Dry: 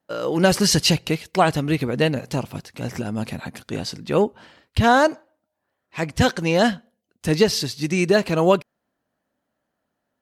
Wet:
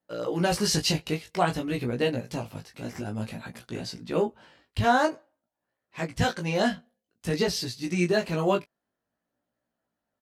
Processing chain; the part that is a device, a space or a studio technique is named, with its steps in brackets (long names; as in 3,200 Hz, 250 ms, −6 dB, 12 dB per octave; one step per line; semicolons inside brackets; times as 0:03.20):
double-tracked vocal (double-tracking delay 17 ms −8.5 dB; chorus effect 0.52 Hz, delay 16.5 ms, depth 3.4 ms)
level −4.5 dB